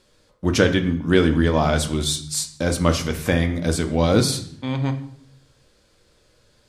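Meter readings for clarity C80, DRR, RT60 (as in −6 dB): 14.5 dB, 6.0 dB, 0.60 s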